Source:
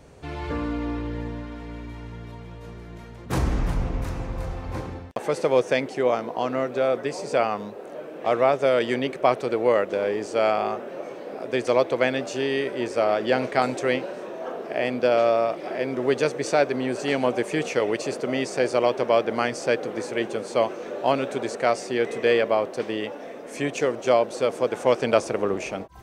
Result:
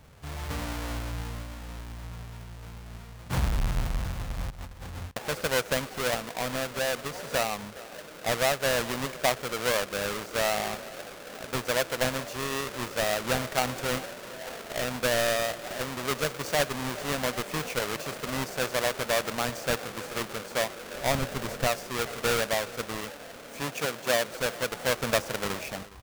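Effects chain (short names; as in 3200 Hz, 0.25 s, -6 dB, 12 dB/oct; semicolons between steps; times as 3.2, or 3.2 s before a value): half-waves squared off; 4.5–5.13 negative-ratio compressor -31 dBFS, ratio -0.5; 20.94–21.68 low shelf 160 Hz +11.5 dB; 23.61–24.27 HPF 120 Hz; bell 350 Hz -10 dB 1.1 oct; echo 0.413 s -19.5 dB; gain -7 dB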